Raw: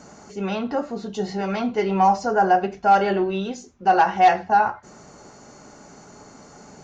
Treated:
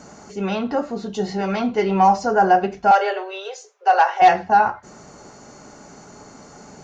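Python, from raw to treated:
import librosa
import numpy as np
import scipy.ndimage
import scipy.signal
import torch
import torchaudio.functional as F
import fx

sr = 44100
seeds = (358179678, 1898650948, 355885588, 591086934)

y = fx.cheby1_highpass(x, sr, hz=420.0, order=6, at=(2.91, 4.22))
y = F.gain(torch.from_numpy(y), 2.5).numpy()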